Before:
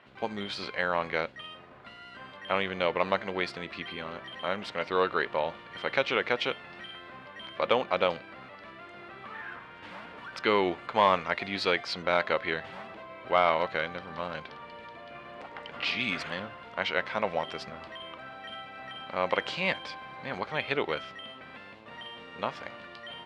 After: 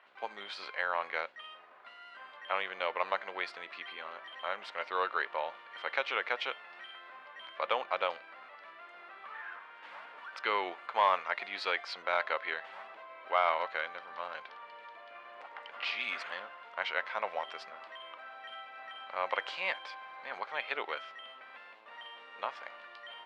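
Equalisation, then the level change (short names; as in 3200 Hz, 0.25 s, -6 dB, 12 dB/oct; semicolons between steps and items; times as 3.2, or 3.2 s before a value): HPF 830 Hz 12 dB/oct; high shelf 2700 Hz -10 dB; 0.0 dB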